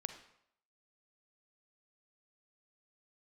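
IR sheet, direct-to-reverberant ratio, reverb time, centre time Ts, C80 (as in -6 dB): 7.5 dB, 0.70 s, 14 ms, 12.0 dB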